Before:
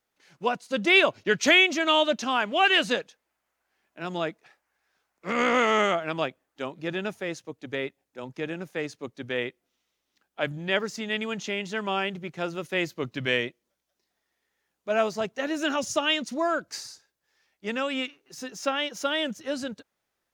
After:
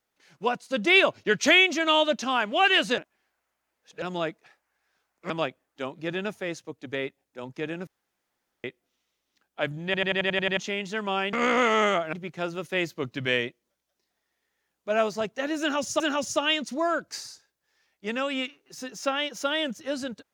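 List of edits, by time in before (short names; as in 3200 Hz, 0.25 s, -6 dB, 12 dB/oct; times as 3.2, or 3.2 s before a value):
2.98–4.02 reverse
5.3–6.1 move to 12.13
8.67–9.44 room tone
10.65 stutter in place 0.09 s, 8 plays
15.6–16 loop, 2 plays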